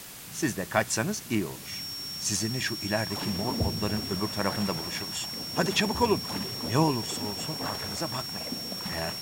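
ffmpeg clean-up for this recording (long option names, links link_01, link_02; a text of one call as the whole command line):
ffmpeg -i in.wav -af "bandreject=frequency=5500:width=30,afwtdn=0.0071" out.wav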